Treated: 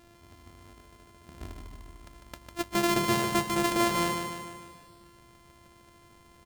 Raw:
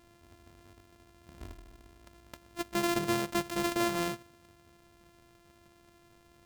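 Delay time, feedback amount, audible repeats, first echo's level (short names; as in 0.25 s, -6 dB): 0.15 s, 55%, 6, -5.5 dB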